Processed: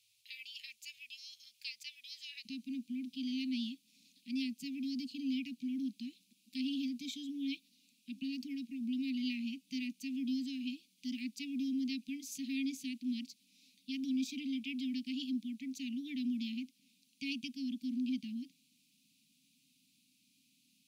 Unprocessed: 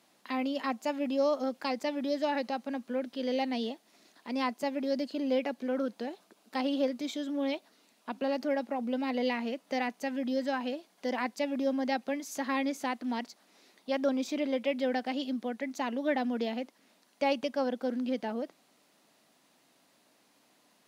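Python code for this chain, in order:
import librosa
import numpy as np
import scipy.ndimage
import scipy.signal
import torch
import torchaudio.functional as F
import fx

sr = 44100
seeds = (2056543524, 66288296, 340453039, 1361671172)

y = fx.cheby1_bandstop(x, sr, low_hz=fx.steps((0.0, 120.0), (2.45, 270.0)), high_hz=2400.0, order=5)
y = y * 10.0 ** (-2.0 / 20.0)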